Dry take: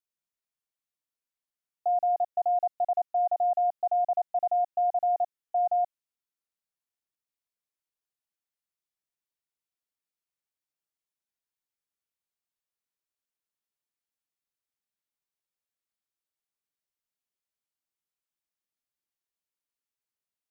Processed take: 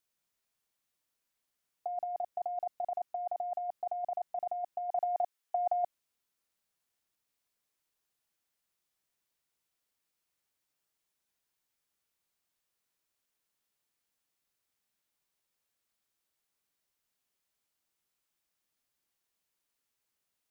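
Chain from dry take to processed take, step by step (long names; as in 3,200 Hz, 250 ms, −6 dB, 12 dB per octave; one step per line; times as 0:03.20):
0:04.90–0:05.83: high-pass filter 560 Hz → 690 Hz 6 dB per octave
compressor whose output falls as the input rises −31 dBFS, ratio −0.5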